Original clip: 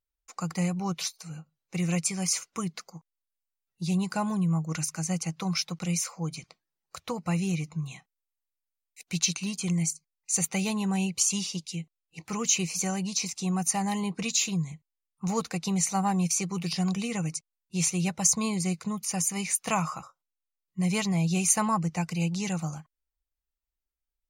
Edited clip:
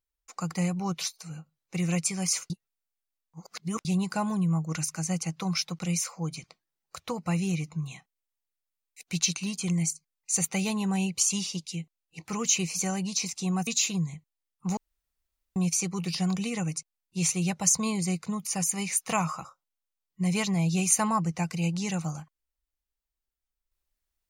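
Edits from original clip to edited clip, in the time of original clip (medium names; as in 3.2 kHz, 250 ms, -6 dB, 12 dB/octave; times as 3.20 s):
2.50–3.85 s: reverse
13.67–14.25 s: delete
15.35–16.14 s: room tone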